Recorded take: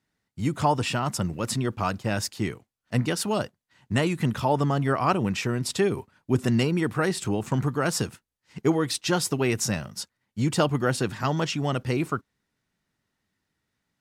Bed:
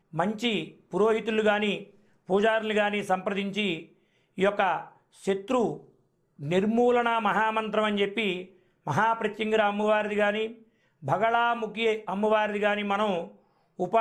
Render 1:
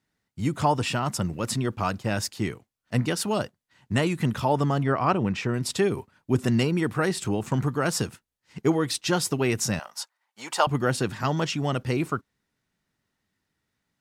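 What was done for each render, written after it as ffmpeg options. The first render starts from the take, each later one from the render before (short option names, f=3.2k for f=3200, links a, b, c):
-filter_complex "[0:a]asettb=1/sr,asplit=3[a][b][c];[a]atrim=end=4.834[d];[b]atrim=start=4.83:end=5.54,asetpts=PTS-STARTPTS,afade=t=in:d=0.004:c=qsin,afade=t=out:st=0.706:d=0.004:c=qsin,aemphasis=mode=reproduction:type=50fm[e];[c]atrim=start=5.536[f];[d][e]acrossfade=d=0.004:c1=hsin:c2=qsin[g];[g][f]acrossfade=d=0.004:c1=qsin:c2=hsin,asettb=1/sr,asplit=3[h][i][j];[h]atrim=end=9.794[k];[i]atrim=start=9.79:end=10.67,asetpts=PTS-STARTPTS,afade=t=in:d=0.004:c=qsin,afade=t=out:st=0.876:d=0.004:c=qsin,highpass=f=840:t=q:w=2.4[l];[j]atrim=start=10.666[m];[k][l]acrossfade=d=0.004:c1=hsin:c2=qsin[n];[n][m]acrossfade=d=0.004:c1=qsin:c2=hsin"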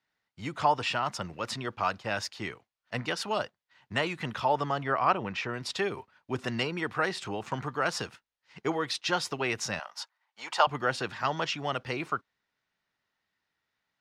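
-filter_complex "[0:a]acrossover=split=530 5600:gain=0.224 1 0.126[a][b][c];[a][b][c]amix=inputs=3:normalize=0,bandreject=f=7.7k:w=24"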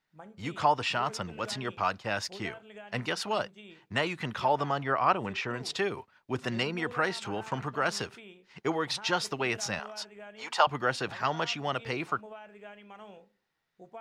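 -filter_complex "[1:a]volume=-22.5dB[a];[0:a][a]amix=inputs=2:normalize=0"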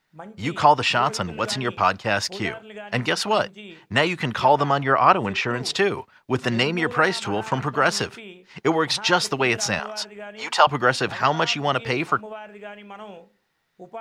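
-af "volume=9.5dB,alimiter=limit=-2dB:level=0:latency=1"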